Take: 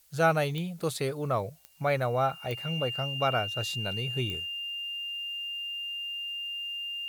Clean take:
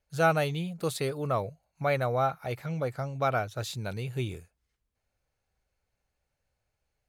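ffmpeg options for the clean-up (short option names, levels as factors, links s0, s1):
-af "adeclick=t=4,bandreject=f=2800:w=30,agate=range=0.0891:threshold=0.0251"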